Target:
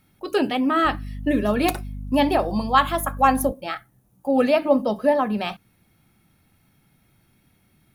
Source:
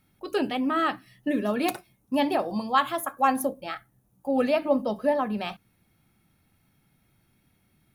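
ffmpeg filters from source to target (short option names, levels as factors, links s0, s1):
-filter_complex "[0:a]asettb=1/sr,asplit=3[s0][s1][s2];[s0]atrim=end=0.854[s3];[s1]atrim=start=0.85:end=3.52,asetpts=PTS-STARTPTS,afade=t=in:d=0.004:c=qsin,afade=t=out:st=2.666:d=0.004:c=qsin,aeval=exprs='val(0)+0.0158*(sin(2*PI*50*n/s)+sin(2*PI*2*50*n/s)/2+sin(2*PI*3*50*n/s)/3+sin(2*PI*4*50*n/s)/4+sin(2*PI*5*50*n/s)/5)':c=same[s4];[s2]atrim=start=3.516[s5];[s3][s4]acrossfade=d=0.004:c1=hsin:c2=qsin[s6];[s6][s5]acrossfade=d=0.004:c1=qsin:c2=hsin,volume=1.78"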